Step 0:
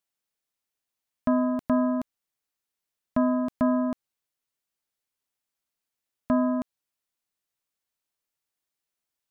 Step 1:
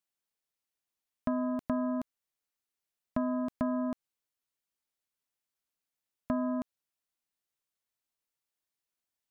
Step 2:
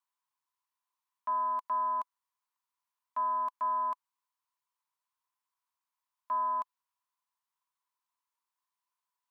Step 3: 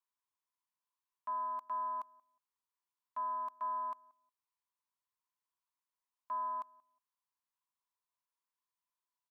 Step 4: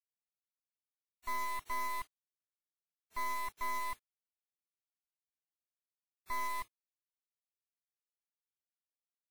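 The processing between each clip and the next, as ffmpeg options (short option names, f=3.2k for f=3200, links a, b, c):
-af "acompressor=threshold=-23dB:ratio=6,volume=-4dB"
-af "alimiter=level_in=3.5dB:limit=-24dB:level=0:latency=1,volume=-3.5dB,highpass=f=1k:t=q:w=12,volume=-4dB"
-filter_complex "[0:a]asplit=2[a][b];[b]adelay=181,lowpass=f=950:p=1,volume=-21dB,asplit=2[c][d];[d]adelay=181,lowpass=f=950:p=1,volume=0.22[e];[a][c][e]amix=inputs=3:normalize=0,volume=-6.5dB"
-af "acrusher=bits=5:dc=4:mix=0:aa=0.000001,volume=4.5dB" -ar 48000 -c:a wmav2 -b:a 32k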